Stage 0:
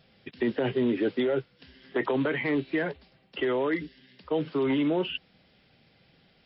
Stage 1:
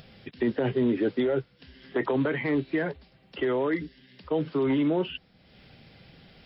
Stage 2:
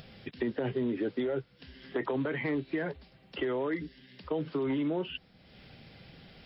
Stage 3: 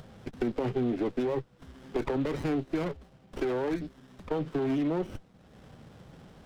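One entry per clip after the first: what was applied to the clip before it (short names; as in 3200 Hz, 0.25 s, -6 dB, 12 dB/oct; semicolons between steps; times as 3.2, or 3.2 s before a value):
dynamic EQ 2800 Hz, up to -4 dB, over -49 dBFS, Q 1.8; upward compressor, threshold -45 dBFS; low shelf 130 Hz +7 dB
compressor 2.5:1, threshold -31 dBFS, peak gain reduction 7.5 dB
running maximum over 17 samples; gain +2.5 dB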